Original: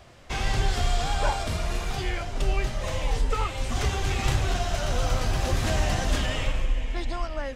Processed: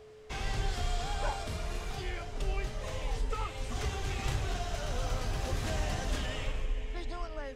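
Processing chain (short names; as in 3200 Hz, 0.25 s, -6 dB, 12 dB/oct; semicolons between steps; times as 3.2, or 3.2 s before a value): whine 430 Hz -42 dBFS; gain -8.5 dB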